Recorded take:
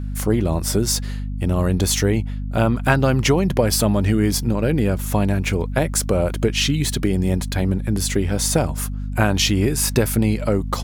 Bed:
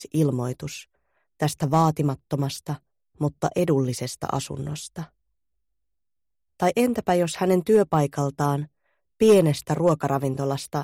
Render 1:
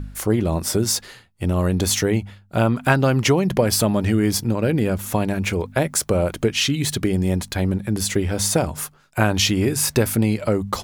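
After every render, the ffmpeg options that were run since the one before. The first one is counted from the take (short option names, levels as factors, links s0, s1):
-af "bandreject=f=50:t=h:w=4,bandreject=f=100:t=h:w=4,bandreject=f=150:t=h:w=4,bandreject=f=200:t=h:w=4,bandreject=f=250:t=h:w=4"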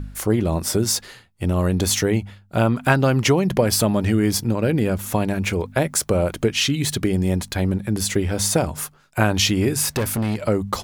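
-filter_complex "[0:a]asettb=1/sr,asplit=3[s0][s1][s2];[s0]atrim=end=9.824[s3];[s1]atrim=start=9.82:end=10.47,asetpts=PTS-STARTPTS,afade=t=in:d=0.004:c=qsin,afade=t=out:st=0.646:d=0.004:c=qsin,asoftclip=type=hard:threshold=0.126[s4];[s2]atrim=start=10.466[s5];[s3][s4]acrossfade=d=0.004:c1=hsin:c2=qsin[s6];[s6][s5]acrossfade=d=0.004:c1=qsin:c2=hsin"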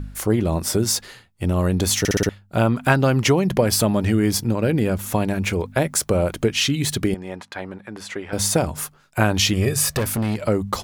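-filter_complex "[0:a]asettb=1/sr,asplit=3[s0][s1][s2];[s0]atrim=end=7.144[s3];[s1]atrim=start=7.14:end=8.33,asetpts=PTS-STARTPTS,afade=t=in:d=0.004:c=qsin,afade=t=out:st=1.186:d=0.004:c=qsin,bandpass=f=1200:t=q:w=0.85[s4];[s2]atrim=start=8.326[s5];[s3][s4]acrossfade=d=0.004:c1=hsin:c2=qsin[s6];[s6][s5]acrossfade=d=0.004:c1=qsin:c2=hsin,asettb=1/sr,asplit=3[s7][s8][s9];[s7]atrim=end=9.534[s10];[s8]atrim=start=9.53:end=9.99,asetpts=PTS-STARTPTS,afade=t=in:d=0.004:c=qsin,afade=t=out:st=0.456:d=0.004:c=qsin,aecho=1:1:1.7:0.65,atrim=end_sample=20286[s11];[s9]atrim=start=9.986[s12];[s10][s11]acrossfade=d=0.004:c1=hsin:c2=qsin[s13];[s13][s12]acrossfade=d=0.004:c1=qsin:c2=hsin,asplit=6[s14][s15][s16][s17][s18][s19];[s14]atrim=end=2.052[s20];[s15]atrim=start=1.988:end=2.052[s21];[s16]atrim=start=1.988:end=2.052[s22];[s17]atrim=start=1.988:end=2.052[s23];[s18]atrim=start=1.988:end=2.052[s24];[s19]atrim=start=2.288[s25];[s20][s21]acrossfade=d=0.004:c1=hsin:c2=hsin[s26];[s26][s22]acrossfade=d=0.004:c1=hsin:c2=hsin[s27];[s27][s23]acrossfade=d=0.004:c1=hsin:c2=hsin[s28];[s28][s24]acrossfade=d=0.004:c1=hsin:c2=hsin[s29];[s29][s25]acrossfade=d=0.004:c1=hsin:c2=hsin"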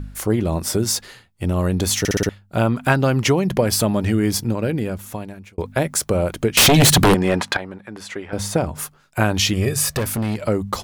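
-filter_complex "[0:a]asettb=1/sr,asplit=3[s0][s1][s2];[s0]atrim=end=6.574[s3];[s1]atrim=start=6.57:end=7.57,asetpts=PTS-STARTPTS,afade=t=in:d=0.004:c=qsin,afade=t=out:st=0.996:d=0.004:c=qsin,aeval=exprs='0.376*sin(PI/2*3.98*val(0)/0.376)':c=same[s4];[s2]atrim=start=7.566[s5];[s3][s4]acrossfade=d=0.004:c1=hsin:c2=qsin[s6];[s6][s5]acrossfade=d=0.004:c1=qsin:c2=hsin,asplit=3[s7][s8][s9];[s7]afade=t=out:st=8.25:d=0.02[s10];[s8]highshelf=f=3700:g=-9,afade=t=in:st=8.25:d=0.02,afade=t=out:st=8.78:d=0.02[s11];[s9]afade=t=in:st=8.78:d=0.02[s12];[s10][s11][s12]amix=inputs=3:normalize=0,asplit=2[s13][s14];[s13]atrim=end=5.58,asetpts=PTS-STARTPTS,afade=t=out:st=4.45:d=1.13[s15];[s14]atrim=start=5.58,asetpts=PTS-STARTPTS,afade=t=in:d=0.004:c=hsin[s16];[s15][s16]concat=n=2:v=0:a=1"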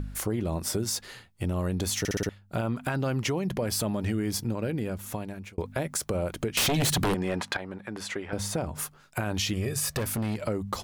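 -af "alimiter=limit=0.299:level=0:latency=1:release=38,acompressor=threshold=0.0224:ratio=2"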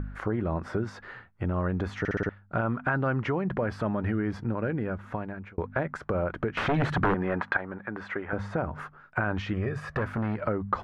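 -af "lowpass=f=1500:t=q:w=2.4"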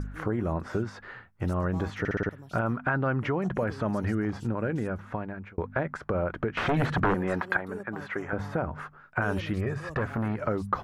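-filter_complex "[1:a]volume=0.0708[s0];[0:a][s0]amix=inputs=2:normalize=0"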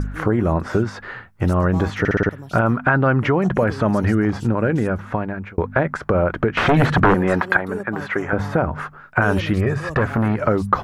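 -af "volume=3.35,alimiter=limit=0.708:level=0:latency=1"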